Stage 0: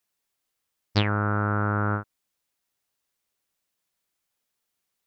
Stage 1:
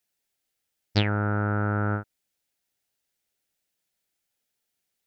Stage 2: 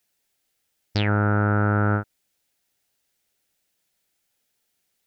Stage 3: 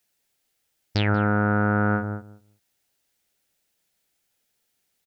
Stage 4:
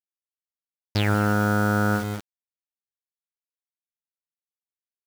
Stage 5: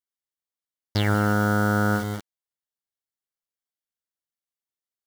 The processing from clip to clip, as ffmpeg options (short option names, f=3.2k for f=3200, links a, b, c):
-af "equalizer=f=1.1k:t=o:w=0.31:g=-11.5"
-af "alimiter=limit=-18.5dB:level=0:latency=1,volume=6.5dB"
-filter_complex "[0:a]asplit=2[a][b];[b]adelay=187,lowpass=f=800:p=1,volume=-7dB,asplit=2[c][d];[d]adelay=187,lowpass=f=800:p=1,volume=0.16,asplit=2[e][f];[f]adelay=187,lowpass=f=800:p=1,volume=0.16[g];[a][c][e][g]amix=inputs=4:normalize=0"
-af "acrusher=bits=5:mix=0:aa=0.000001"
-af "asuperstop=centerf=2500:order=4:qfactor=6.2"